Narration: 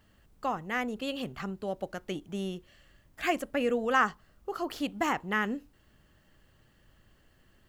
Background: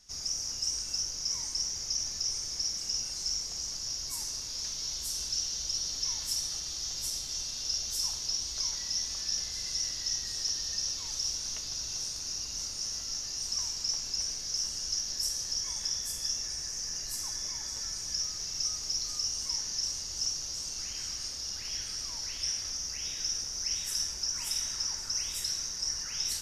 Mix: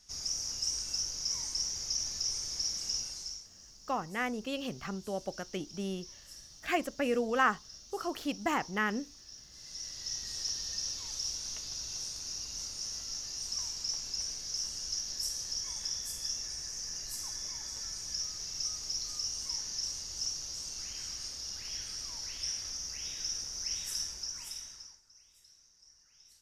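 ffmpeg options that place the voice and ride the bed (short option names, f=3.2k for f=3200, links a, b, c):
-filter_complex "[0:a]adelay=3450,volume=-2dB[a];[1:a]volume=13.5dB,afade=t=out:st=2.92:d=0.56:silence=0.141254,afade=t=in:st=9.49:d=0.85:silence=0.177828,afade=t=out:st=23.93:d=1.08:silence=0.0595662[b];[a][b]amix=inputs=2:normalize=0"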